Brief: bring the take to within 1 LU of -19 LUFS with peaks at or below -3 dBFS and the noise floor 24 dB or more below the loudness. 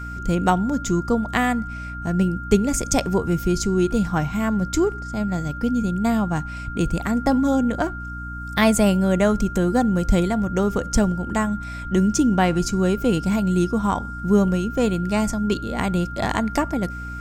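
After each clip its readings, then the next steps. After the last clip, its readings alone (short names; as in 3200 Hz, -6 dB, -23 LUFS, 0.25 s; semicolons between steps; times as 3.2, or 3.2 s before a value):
hum 60 Hz; harmonics up to 300 Hz; hum level -32 dBFS; steady tone 1400 Hz; tone level -33 dBFS; loudness -21.5 LUFS; peak -3.0 dBFS; loudness target -19.0 LUFS
-> notches 60/120/180/240/300 Hz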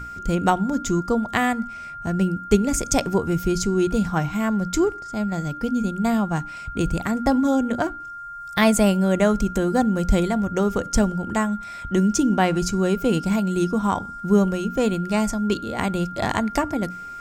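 hum none; steady tone 1400 Hz; tone level -33 dBFS
-> notch 1400 Hz, Q 30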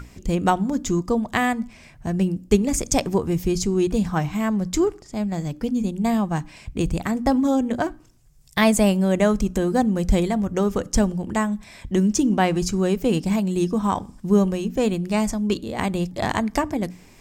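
steady tone none; loudness -22.5 LUFS; peak -3.5 dBFS; loudness target -19.0 LUFS
-> gain +3.5 dB; limiter -3 dBFS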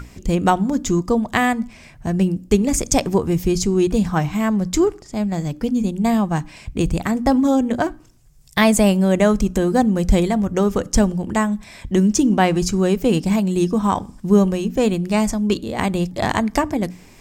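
loudness -19.0 LUFS; peak -3.0 dBFS; noise floor -46 dBFS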